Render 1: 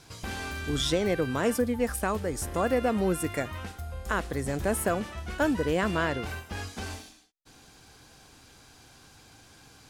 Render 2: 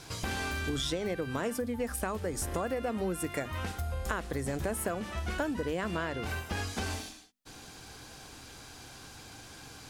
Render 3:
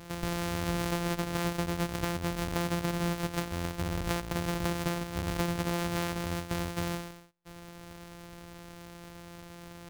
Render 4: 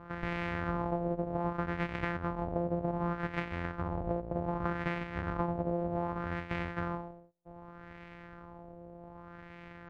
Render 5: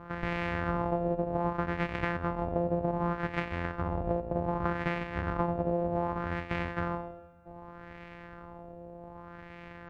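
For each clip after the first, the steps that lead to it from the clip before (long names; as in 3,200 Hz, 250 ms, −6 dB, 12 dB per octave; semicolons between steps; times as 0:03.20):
mains-hum notches 50/100/150/200/250 Hz; downward compressor 6 to 1, threshold −36 dBFS, peak gain reduction 14 dB; level +5.5 dB
samples sorted by size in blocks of 256 samples; level +1.5 dB
auto-filter low-pass sine 0.65 Hz 580–2,200 Hz; level −3.5 dB
convolution reverb RT60 2.1 s, pre-delay 6 ms, DRR 18 dB; level +3 dB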